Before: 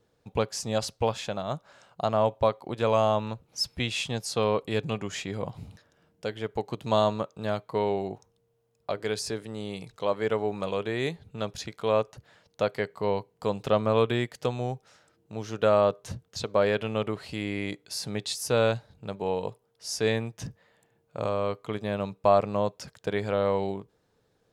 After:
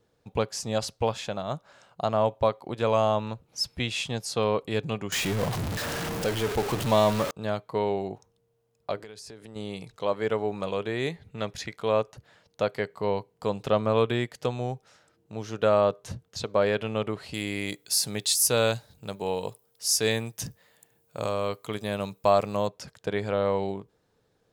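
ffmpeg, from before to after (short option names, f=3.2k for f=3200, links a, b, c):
-filter_complex "[0:a]asettb=1/sr,asplit=3[a][b][c];[a]atrim=end=5.124[d];[b]atrim=start=5.12:end=7.31,asetpts=PTS-STARTPTS,afade=t=in:d=0.004:c=qsin,afade=t=out:st=2.186:d=0.004:c=qsin,aeval=exprs='val(0)+0.5*0.0531*sgn(val(0))':c=same[e];[c]atrim=start=7.306[f];[d][e]acrossfade=d=0.004:c1=hsin:c2=qsin[g];[g][f]acrossfade=d=0.004:c1=qsin:c2=hsin,asettb=1/sr,asplit=3[h][i][j];[h]atrim=end=8.984[k];[i]atrim=start=8.98:end=9.56,asetpts=PTS-STARTPTS,afade=t=in:d=0.004:c=qsin,afade=t=out:st=0.576:d=0.004:c=qsin,acompressor=threshold=-40dB:ratio=12:attack=3.2:release=140:knee=1:detection=peak[l];[j]atrim=start=9.556[m];[k][l]acrossfade=d=0.004:c1=hsin:c2=qsin[n];[n][m]acrossfade=d=0.004:c1=qsin:c2=hsin,asettb=1/sr,asplit=3[o][p][q];[o]atrim=end=11.104[r];[p]atrim=start=11.1:end=11.77,asetpts=PTS-STARTPTS,afade=t=in:d=0.004:c=qsin,afade=t=out:st=0.666:d=0.004:c=qsin,equalizer=f=2k:t=o:w=0.46:g=8.5[s];[q]atrim=start=11.766[t];[r][s]acrossfade=d=0.004:c1=hsin:c2=qsin[u];[u][t]acrossfade=d=0.004:c1=qsin:c2=hsin,asettb=1/sr,asplit=3[v][w][x];[v]atrim=end=17.344[y];[w]atrim=start=17.34:end=22.68,asetpts=PTS-STARTPTS,afade=t=in:d=0.004:c=qsin,afade=t=out:st=5.336:d=0.004:c=qsin,aemphasis=mode=production:type=75fm[z];[x]atrim=start=22.676[aa];[y][z]acrossfade=d=0.004:c1=hsin:c2=qsin[ab];[ab][aa]acrossfade=d=0.004:c1=qsin:c2=hsin"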